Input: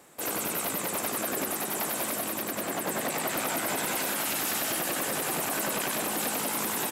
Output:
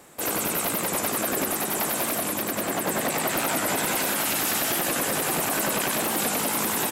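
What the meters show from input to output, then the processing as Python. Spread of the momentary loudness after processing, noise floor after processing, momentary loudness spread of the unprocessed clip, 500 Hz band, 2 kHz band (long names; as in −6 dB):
3 LU, −30 dBFS, 3 LU, +4.5 dB, +4.5 dB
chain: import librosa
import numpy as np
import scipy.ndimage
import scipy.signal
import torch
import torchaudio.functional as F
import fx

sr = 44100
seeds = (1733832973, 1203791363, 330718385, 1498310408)

y = fx.low_shelf(x, sr, hz=90.0, db=7.0)
y = fx.record_warp(y, sr, rpm=45.0, depth_cents=100.0)
y = y * 10.0 ** (4.5 / 20.0)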